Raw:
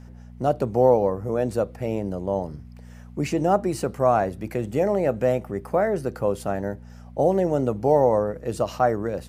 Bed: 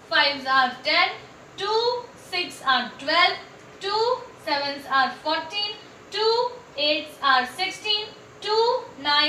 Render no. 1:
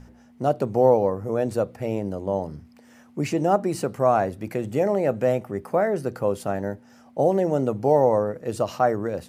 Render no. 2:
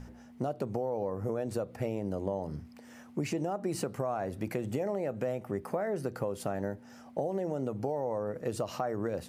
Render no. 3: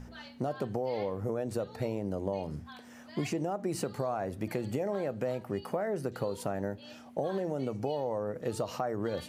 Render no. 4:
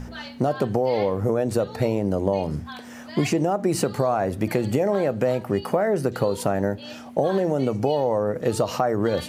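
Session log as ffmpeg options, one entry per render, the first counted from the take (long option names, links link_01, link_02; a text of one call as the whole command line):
ffmpeg -i in.wav -af "bandreject=frequency=60:width_type=h:width=4,bandreject=frequency=120:width_type=h:width=4,bandreject=frequency=180:width_type=h:width=4" out.wav
ffmpeg -i in.wav -af "alimiter=limit=-16dB:level=0:latency=1:release=192,acompressor=threshold=-29dB:ratio=6" out.wav
ffmpeg -i in.wav -i bed.wav -filter_complex "[1:a]volume=-30dB[link_01];[0:a][link_01]amix=inputs=2:normalize=0" out.wav
ffmpeg -i in.wav -af "volume=11dB" out.wav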